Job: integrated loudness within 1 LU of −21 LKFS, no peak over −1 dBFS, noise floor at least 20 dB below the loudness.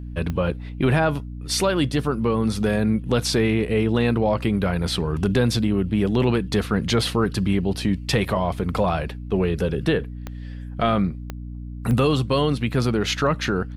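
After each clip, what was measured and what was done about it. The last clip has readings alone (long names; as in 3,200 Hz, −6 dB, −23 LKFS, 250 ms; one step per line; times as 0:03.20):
number of clicks 4; mains hum 60 Hz; hum harmonics up to 300 Hz; level of the hum −31 dBFS; integrated loudness −22.5 LKFS; sample peak −7.5 dBFS; target loudness −21.0 LKFS
→ click removal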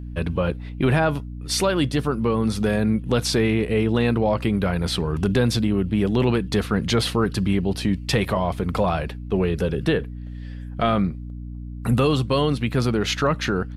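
number of clicks 0; mains hum 60 Hz; hum harmonics up to 300 Hz; level of the hum −31 dBFS
→ hum removal 60 Hz, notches 5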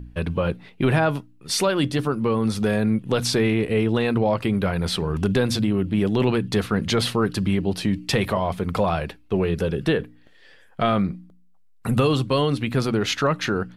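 mains hum none found; integrated loudness −23.0 LKFS; sample peak −8.0 dBFS; target loudness −21.0 LKFS
→ level +2 dB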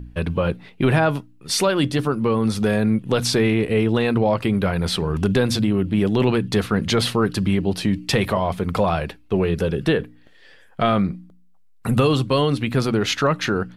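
integrated loudness −21.0 LKFS; sample peak −6.0 dBFS; background noise floor −50 dBFS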